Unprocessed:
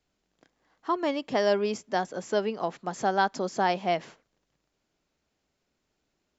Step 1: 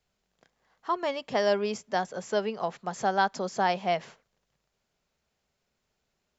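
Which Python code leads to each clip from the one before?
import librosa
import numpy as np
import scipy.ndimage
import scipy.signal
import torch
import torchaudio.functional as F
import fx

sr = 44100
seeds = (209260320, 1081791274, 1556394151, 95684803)

y = fx.peak_eq(x, sr, hz=300.0, db=-13.0, octaves=0.36)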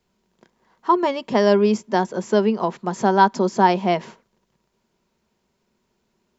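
y = fx.small_body(x, sr, hz=(220.0, 350.0, 950.0), ring_ms=40, db=12)
y = y * librosa.db_to_amplitude(4.5)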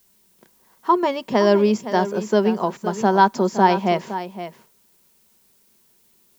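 y = fx.dmg_noise_colour(x, sr, seeds[0], colour='blue', level_db=-60.0)
y = y + 10.0 ** (-12.0 / 20.0) * np.pad(y, (int(515 * sr / 1000.0), 0))[:len(y)]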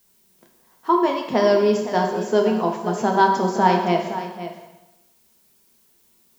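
y = fx.rev_plate(x, sr, seeds[1], rt60_s=1.0, hf_ratio=0.95, predelay_ms=0, drr_db=2.0)
y = y * librosa.db_to_amplitude(-2.5)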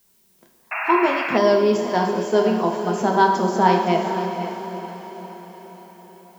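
y = fx.echo_diffused(x, sr, ms=477, feedback_pct=54, wet_db=-10)
y = fx.spec_paint(y, sr, seeds[2], shape='noise', start_s=0.71, length_s=0.67, low_hz=620.0, high_hz=2800.0, level_db=-26.0)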